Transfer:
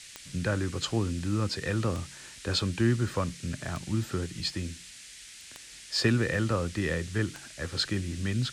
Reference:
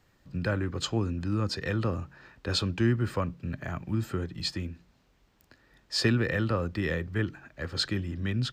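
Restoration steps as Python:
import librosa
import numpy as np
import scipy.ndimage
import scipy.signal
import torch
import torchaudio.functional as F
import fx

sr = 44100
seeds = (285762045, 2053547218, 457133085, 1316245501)

y = fx.fix_declick_ar(x, sr, threshold=10.0)
y = fx.noise_reduce(y, sr, print_start_s=4.9, print_end_s=5.4, reduce_db=16.0)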